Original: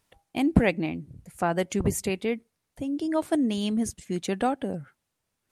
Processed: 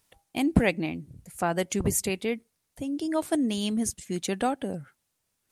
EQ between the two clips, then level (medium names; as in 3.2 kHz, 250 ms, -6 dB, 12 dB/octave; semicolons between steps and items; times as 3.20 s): treble shelf 4 kHz +8 dB; -1.5 dB